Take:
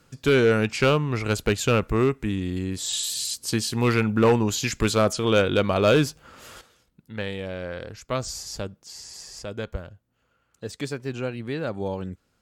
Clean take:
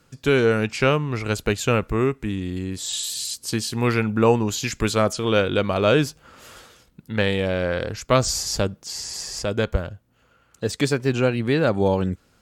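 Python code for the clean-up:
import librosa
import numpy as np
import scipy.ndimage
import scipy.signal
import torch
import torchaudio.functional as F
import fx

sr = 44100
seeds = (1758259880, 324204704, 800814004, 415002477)

y = fx.fix_declip(x, sr, threshold_db=-12.0)
y = fx.fix_level(y, sr, at_s=6.61, step_db=9.5)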